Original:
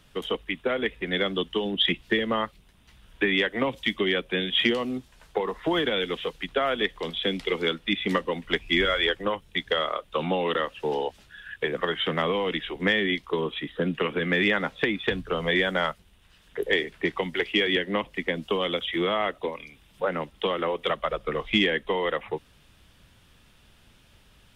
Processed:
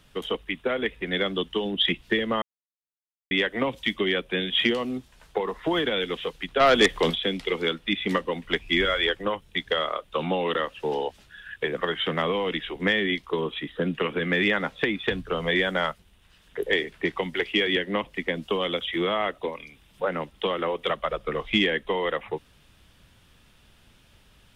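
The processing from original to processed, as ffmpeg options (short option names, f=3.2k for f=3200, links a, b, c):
-filter_complex "[0:a]asplit=3[a][b][c];[a]afade=t=out:st=6.59:d=0.02[d];[b]aeval=exprs='0.282*sin(PI/2*2*val(0)/0.282)':c=same,afade=t=in:st=6.59:d=0.02,afade=t=out:st=7.14:d=0.02[e];[c]afade=t=in:st=7.14:d=0.02[f];[d][e][f]amix=inputs=3:normalize=0,asplit=3[g][h][i];[g]atrim=end=2.42,asetpts=PTS-STARTPTS,afade=t=out:st=2.416:d=0.004:c=hsin[j];[h]atrim=start=2.42:end=3.31,asetpts=PTS-STARTPTS,volume=0[k];[i]atrim=start=3.31,asetpts=PTS-STARTPTS,afade=t=in:d=0.004:c=hsin[l];[j][k][l]concat=n=3:v=0:a=1"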